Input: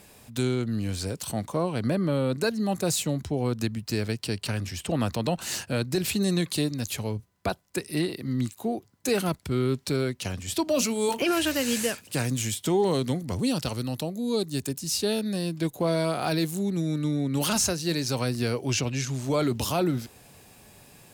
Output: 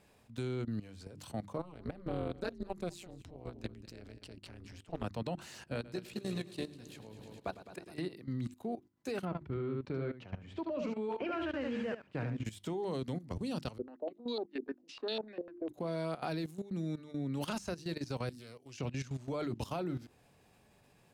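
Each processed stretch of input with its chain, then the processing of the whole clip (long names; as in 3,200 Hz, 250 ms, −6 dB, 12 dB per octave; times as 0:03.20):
0:01.58–0:05.04: amplitude modulation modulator 180 Hz, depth 90% + single-tap delay 207 ms −16 dB + highs frequency-modulated by the lows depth 0.12 ms
0:05.74–0:07.99: low-shelf EQ 120 Hz −7.5 dB + amplitude modulation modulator 61 Hz, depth 30% + echo machine with several playback heads 105 ms, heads first and second, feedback 66%, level −13 dB
0:09.25–0:12.45: low-pass filter 2,100 Hz + single-tap delay 74 ms −5 dB
0:13.78–0:15.69: Butterworth high-pass 240 Hz 48 dB per octave + noise gate −38 dBFS, range −13 dB + low-pass on a step sequencer 10 Hz 440–4,000 Hz
0:18.29–0:18.78: first-order pre-emphasis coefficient 0.8 + highs frequency-modulated by the lows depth 0.22 ms
whole clip: low-pass filter 2,700 Hz 6 dB per octave; mains-hum notches 50/100/150/200/250/300/350 Hz; output level in coarse steps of 15 dB; level −6 dB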